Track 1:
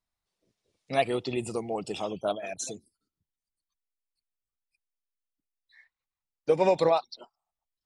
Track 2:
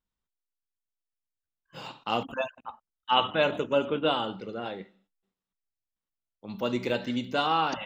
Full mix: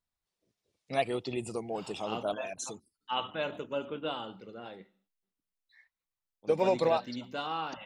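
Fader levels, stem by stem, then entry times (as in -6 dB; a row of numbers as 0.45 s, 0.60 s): -4.0 dB, -9.5 dB; 0.00 s, 0.00 s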